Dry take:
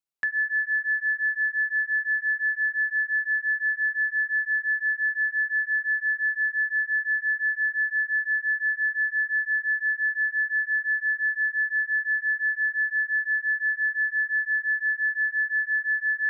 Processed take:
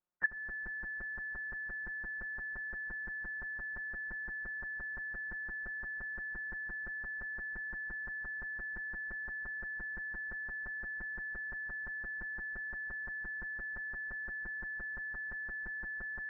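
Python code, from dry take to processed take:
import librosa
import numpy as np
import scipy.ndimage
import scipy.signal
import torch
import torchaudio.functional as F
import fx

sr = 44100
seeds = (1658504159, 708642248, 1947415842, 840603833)

p1 = fx.spec_quant(x, sr, step_db=30)
p2 = fx.schmitt(p1, sr, flips_db=-50.0)
p3 = p1 + (p2 * librosa.db_to_amplitude(-12.0))
p4 = p3 + 0.83 * np.pad(p3, (int(5.6 * sr / 1000.0), 0))[:len(p3)]
p5 = 10.0 ** (-21.0 / 20.0) * np.tanh(p4 / 10.0 ** (-21.0 / 20.0))
p6 = p5 + 10.0 ** (-20.5 / 20.0) * np.pad(p5, (int(146 * sr / 1000.0), 0))[:len(p5)]
p7 = fx.level_steps(p6, sr, step_db=13)
p8 = fx.transient(p7, sr, attack_db=3, sustain_db=-8)
p9 = scipy.signal.sosfilt(scipy.signal.butter(4, 1500.0, 'lowpass', fs=sr, output='sos'), p8)
y = p9 * librosa.db_to_amplitude(4.0)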